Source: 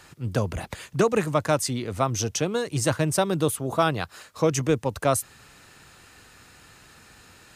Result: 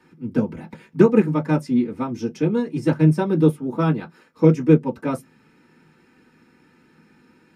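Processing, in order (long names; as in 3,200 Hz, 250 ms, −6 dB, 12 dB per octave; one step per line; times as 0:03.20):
convolution reverb RT60 0.15 s, pre-delay 3 ms, DRR −5.5 dB
expander for the loud parts 1.5 to 1, over −11 dBFS
level −12.5 dB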